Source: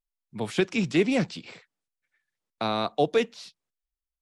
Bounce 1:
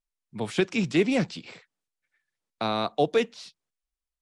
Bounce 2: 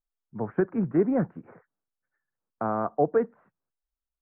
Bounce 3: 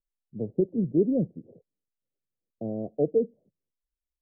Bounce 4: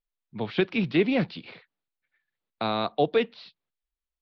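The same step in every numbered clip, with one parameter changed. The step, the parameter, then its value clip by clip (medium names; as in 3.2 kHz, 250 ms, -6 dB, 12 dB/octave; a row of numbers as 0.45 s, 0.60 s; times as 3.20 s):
steep low-pass, frequency: 11 kHz, 1.6 kHz, 570 Hz, 4.4 kHz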